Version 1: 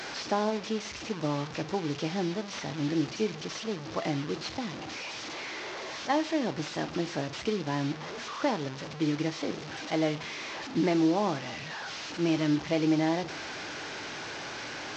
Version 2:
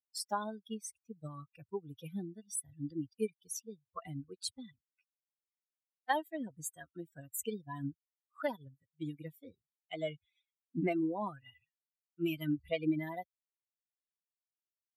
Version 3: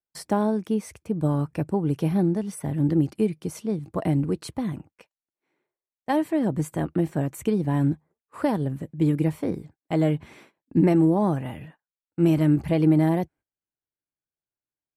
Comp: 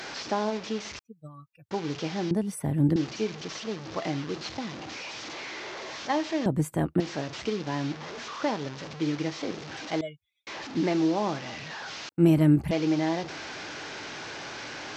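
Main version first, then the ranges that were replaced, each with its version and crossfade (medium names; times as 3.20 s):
1
0.99–1.71 s: from 2
2.31–2.96 s: from 3
6.46–7.00 s: from 3
10.01–10.47 s: from 2
12.09–12.71 s: from 3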